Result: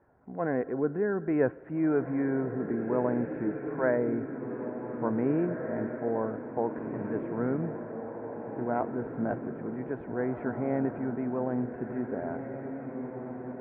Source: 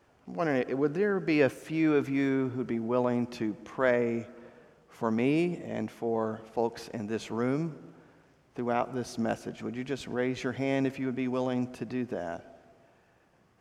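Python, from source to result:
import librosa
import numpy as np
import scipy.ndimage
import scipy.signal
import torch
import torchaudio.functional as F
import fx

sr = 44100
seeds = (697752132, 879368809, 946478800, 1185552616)

y = scipy.signal.sosfilt(scipy.signal.butter(6, 1700.0, 'lowpass', fs=sr, output='sos'), x)
y = fx.notch(y, sr, hz=1200.0, q=7.7)
y = fx.echo_diffused(y, sr, ms=1859, feedback_pct=53, wet_db=-7)
y = F.gain(torch.from_numpy(y), -1.0).numpy()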